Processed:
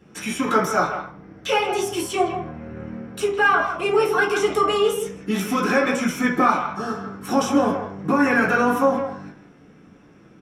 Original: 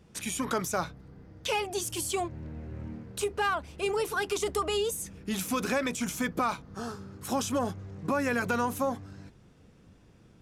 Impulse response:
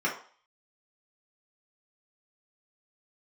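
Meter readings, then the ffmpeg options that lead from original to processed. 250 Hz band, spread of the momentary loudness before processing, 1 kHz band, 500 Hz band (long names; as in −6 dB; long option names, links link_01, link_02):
+10.5 dB, 12 LU, +11.0 dB, +10.0 dB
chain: -filter_complex "[0:a]asplit=2[link_01][link_02];[link_02]adelay=160,highpass=300,lowpass=3400,asoftclip=type=hard:threshold=-23.5dB,volume=-8dB[link_03];[link_01][link_03]amix=inputs=2:normalize=0[link_04];[1:a]atrim=start_sample=2205[link_05];[link_04][link_05]afir=irnorm=-1:irlink=0"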